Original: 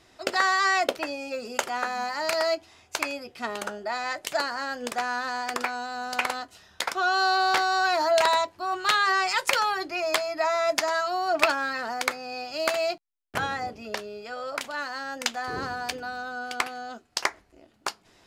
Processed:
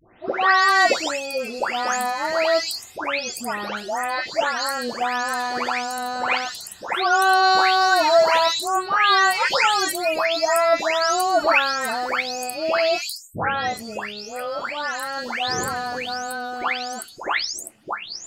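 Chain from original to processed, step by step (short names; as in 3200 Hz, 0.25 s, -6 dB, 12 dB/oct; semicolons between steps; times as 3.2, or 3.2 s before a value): spectral delay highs late, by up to 0.416 s; gain +7 dB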